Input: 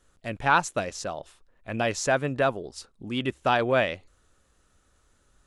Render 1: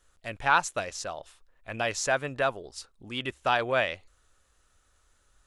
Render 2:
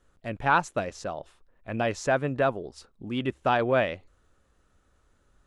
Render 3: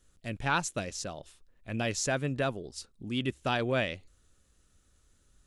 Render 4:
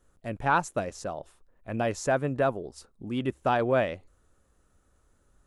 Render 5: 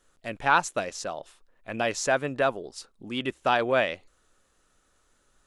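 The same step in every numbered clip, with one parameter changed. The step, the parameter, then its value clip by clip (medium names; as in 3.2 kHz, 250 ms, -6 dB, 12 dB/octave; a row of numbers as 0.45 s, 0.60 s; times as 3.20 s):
peaking EQ, frequency: 210 Hz, 14 kHz, 910 Hz, 3.7 kHz, 72 Hz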